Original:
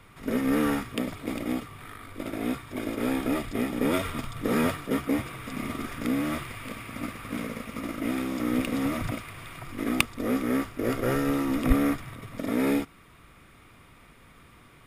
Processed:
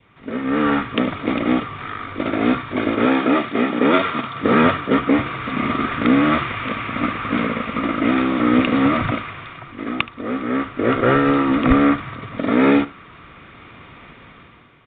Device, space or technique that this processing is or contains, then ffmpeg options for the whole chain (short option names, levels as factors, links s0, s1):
Bluetooth headset: -filter_complex "[0:a]asettb=1/sr,asplit=3[s0][s1][s2];[s0]atrim=end=3.054[s3];[s1]atrim=start=3.05:end=4.44,asetpts=PTS-STARTPTS,afade=t=in:d=0.004:c=qsin,afade=t=out:st=1.386:d=0.004:c=qsin,highpass=180[s4];[s2]atrim=start=4.436[s5];[s3][s4]acrossfade=d=0.004:c1=hsin:c2=qsin[s6];[s6][s5]acrossfade=d=0.004:c1=qsin:c2=hsin,adynamicequalizer=threshold=0.00447:dfrequency=1300:dqfactor=1.9:tfrequency=1300:tqfactor=1.9:attack=5:release=100:ratio=0.375:range=2.5:mode=boostabove:tftype=bell,highpass=f=100:p=1,aecho=1:1:74:0.119,dynaudnorm=f=150:g=9:m=4.47,aresample=8000,aresample=44100" -ar 16000 -c:a sbc -b:a 64k